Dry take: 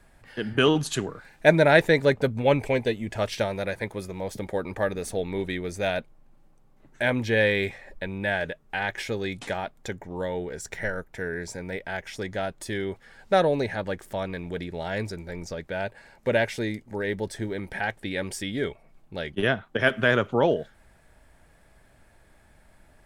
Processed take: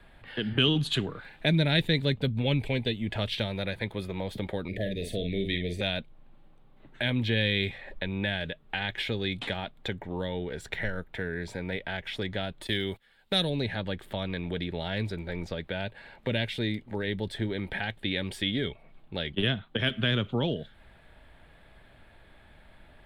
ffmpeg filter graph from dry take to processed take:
-filter_complex "[0:a]asettb=1/sr,asplit=3[a][b][c];[a]atrim=end=4.684[d];[b]atrim=start=4.68:end=5.81,asetpts=PTS-STARTPTS,afade=t=in:d=0.004:c=qsin,afade=t=out:st=1.126:d=0.004:c=qsin,asuperstop=centerf=1100:order=20:qfactor=1.1,asplit=2[e][f];[f]adelay=46,volume=-7dB[g];[e][g]amix=inputs=2:normalize=0,atrim=end_sample=49833[h];[c]atrim=start=5.806[i];[d][h]acrossfade=d=0.004:c1=hsin:c2=qsin[j];[j][i]acrossfade=d=0.004:c1=qsin:c2=hsin,asettb=1/sr,asplit=3[k][l][m];[k]atrim=end=12.674[n];[l]atrim=start=12.67:end=13.5,asetpts=PTS-STARTPTS,afade=t=in:d=0.004:c=qsin,afade=t=out:st=0.826:d=0.004:c=qsin,agate=range=-17dB:threshold=-44dB:ratio=16:release=100:detection=peak,aemphasis=mode=production:type=75fm[o];[m]atrim=start=13.496[p];[n][o]acrossfade=d=0.004:c1=hsin:c2=qsin[q];[q][p]acrossfade=d=0.004:c1=qsin:c2=hsin,acrossover=split=260|3000[r][s][t];[s]acompressor=threshold=-36dB:ratio=6[u];[r][u][t]amix=inputs=3:normalize=0,highshelf=f=4.6k:t=q:w=3:g=-9,volume=2dB"

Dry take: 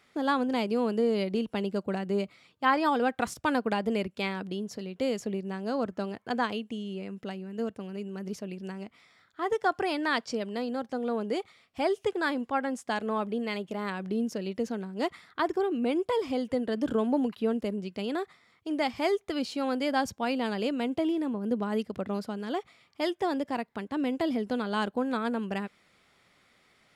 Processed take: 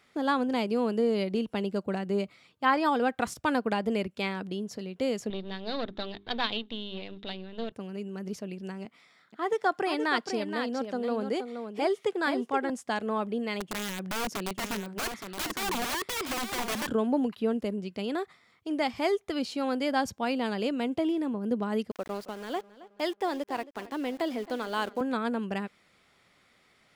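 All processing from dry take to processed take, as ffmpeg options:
-filter_complex "[0:a]asettb=1/sr,asplit=3[a][b][c];[a]atrim=end=5.304[d];[b]atrim=start=5.3:end=7.72,asetpts=PTS-STARTPTS,afade=t=in:d=0.004:c=qsin,afade=t=out:st=2.416:d=0.004:c=qsin,aeval=exprs='if(lt(val(0),0),0.251*val(0),val(0))':c=same,lowpass=f=3.7k:t=q:w=13,bandreject=f=50:t=h:w=6,bandreject=f=100:t=h:w=6,bandreject=f=150:t=h:w=6,bandreject=f=200:t=h:w=6,bandreject=f=250:t=h:w=6,bandreject=f=300:t=h:w=6,bandreject=f=350:t=h:w=6,bandreject=f=400:t=h:w=6[e];[c]atrim=start=7.716[f];[d][e]acrossfade=d=0.004:c1=hsin:c2=qsin[g];[g][f]acrossfade=d=0.004:c1=qsin:c2=hsin,asettb=1/sr,asplit=3[h][i][j];[h]atrim=end=8.854[k];[i]atrim=start=8.85:end=12.7,asetpts=PTS-STARTPTS,afade=t=in:d=0.004:c=qsin,afade=t=out:st=3.846:d=0.004:c=qsin,highpass=f=140:w=0.5412,highpass=f=140:w=1.3066,aecho=1:1:474:0.422,atrim=end_sample=169785[l];[j]atrim=start=12.696[m];[k][l]acrossfade=d=0.004:c1=hsin:c2=qsin[n];[n][m]acrossfade=d=0.004:c1=qsin:c2=hsin,asettb=1/sr,asplit=3[o][p][q];[o]atrim=end=13.604[r];[p]atrim=start=13.6:end=16.87,asetpts=PTS-STARTPTS,afade=t=in:d=0.004:c=qsin,afade=t=out:st=3.266:d=0.004:c=qsin,highpass=51,aeval=exprs='(mod(22.4*val(0)+1,2)-1)/22.4':c=same,aecho=1:1:869:0.447,atrim=end_sample=144207[s];[q]atrim=start=16.866[t];[r][s]acrossfade=d=0.004:c1=hsin:c2=qsin[u];[u][t]acrossfade=d=0.004:c1=qsin:c2=hsin,asettb=1/sr,asplit=3[v][w][x];[v]atrim=end=21.914[y];[w]atrim=start=21.91:end=25.01,asetpts=PTS-STARTPTS,afade=t=in:d=0.004:c=qsin,afade=t=out:st=3.096:d=0.004:c=qsin,highpass=320,aeval=exprs='val(0)*gte(abs(val(0)),0.00631)':c=same,asplit=2[z][aa];[aa]adelay=270,lowpass=f=5k:p=1,volume=-17.5dB,asplit=2[ab][ac];[ac]adelay=270,lowpass=f=5k:p=1,volume=0.47,asplit=2[ad][ae];[ae]adelay=270,lowpass=f=5k:p=1,volume=0.47,asplit=2[af][ag];[ag]adelay=270,lowpass=f=5k:p=1,volume=0.47[ah];[z][ab][ad][af][ah]amix=inputs=5:normalize=0,atrim=end_sample=136710[ai];[x]atrim=start=25.006[aj];[y][ai]acrossfade=d=0.004:c1=hsin:c2=qsin[ak];[ak][aj]acrossfade=d=0.004:c1=qsin:c2=hsin"

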